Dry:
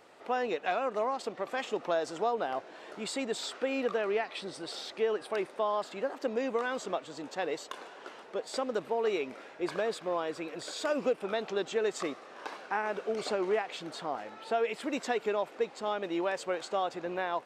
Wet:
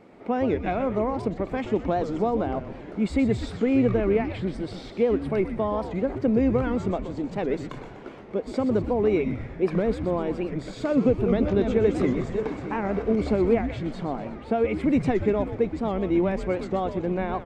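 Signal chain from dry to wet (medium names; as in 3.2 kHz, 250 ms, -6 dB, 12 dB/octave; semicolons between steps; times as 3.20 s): 10.89–13.15 s: backward echo that repeats 308 ms, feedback 46%, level -6 dB; tilt EQ -3 dB/octave; small resonant body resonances 200/2200 Hz, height 12 dB, ringing for 20 ms; frequency-shifting echo 123 ms, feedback 54%, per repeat -150 Hz, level -9.5 dB; warped record 78 rpm, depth 160 cents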